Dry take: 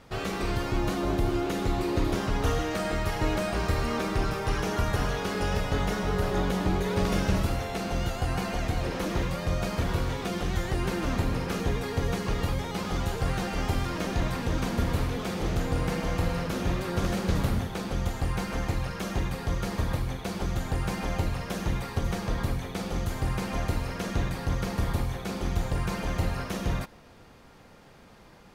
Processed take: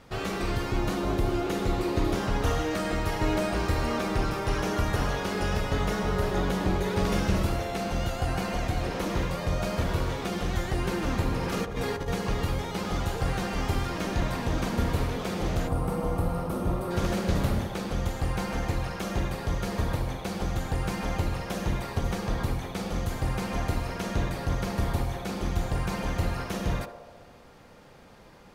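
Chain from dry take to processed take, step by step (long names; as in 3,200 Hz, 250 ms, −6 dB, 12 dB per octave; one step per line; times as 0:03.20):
0:11.43–0:12.08: compressor whose output falls as the input rises −30 dBFS, ratio −0.5
0:15.68–0:16.91: gain on a spectral selection 1,400–7,900 Hz −11 dB
on a send: feedback echo with a band-pass in the loop 68 ms, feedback 79%, band-pass 600 Hz, level −7 dB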